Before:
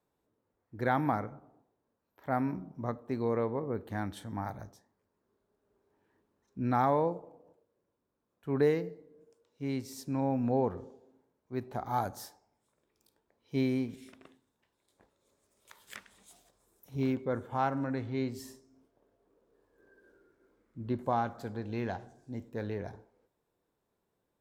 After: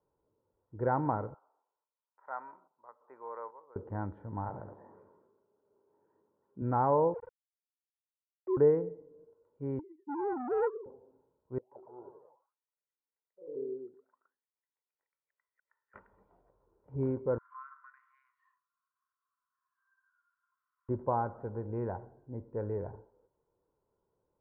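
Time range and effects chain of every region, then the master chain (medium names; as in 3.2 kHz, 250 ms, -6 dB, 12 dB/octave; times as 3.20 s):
1.34–3.76 s: Chebyshev band-pass 1.1–7.2 kHz + square tremolo 1.2 Hz, depth 65%, duty 60%
4.49–6.62 s: high-pass 160 Hz + flutter echo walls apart 11.9 m, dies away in 0.29 s + decay stretcher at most 39 dB/s
7.14–8.57 s: formants replaced by sine waves + small samples zeroed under -47.5 dBFS
9.79–10.86 s: formants replaced by sine waves + expander -50 dBFS + transformer saturation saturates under 1.4 kHz
11.58–15.94 s: auto-wah 370–2100 Hz, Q 12, down, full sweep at -33.5 dBFS + ever faster or slower copies 134 ms, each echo +2 st, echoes 3, each echo -6 dB
17.38–20.89 s: compression 12:1, threshold -33 dBFS + brick-wall FIR high-pass 1 kHz + doubling 23 ms -12.5 dB
whole clip: inverse Chebyshev low-pass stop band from 5.3 kHz, stop band 70 dB; comb 2.1 ms, depth 43%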